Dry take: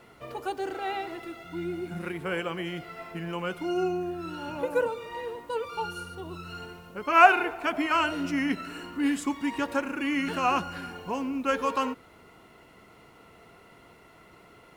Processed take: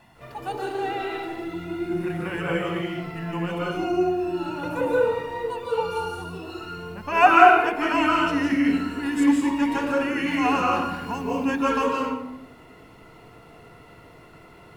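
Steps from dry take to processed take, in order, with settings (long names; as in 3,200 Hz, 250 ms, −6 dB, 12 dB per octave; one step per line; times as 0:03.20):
0:10.84–0:11.44: high-shelf EQ 9,000 Hz +6 dB
convolution reverb RT60 0.85 s, pre-delay 149 ms, DRR −2.5 dB
level −2.5 dB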